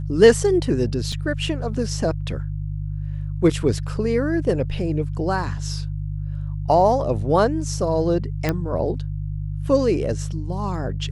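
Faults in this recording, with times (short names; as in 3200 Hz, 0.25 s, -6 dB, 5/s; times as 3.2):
hum 50 Hz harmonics 3 -27 dBFS
1.12 gap 3.9 ms
8.49 pop -8 dBFS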